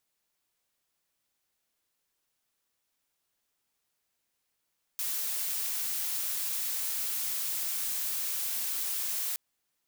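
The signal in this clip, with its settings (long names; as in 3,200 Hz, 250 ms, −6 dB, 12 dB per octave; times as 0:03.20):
noise blue, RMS −32.5 dBFS 4.37 s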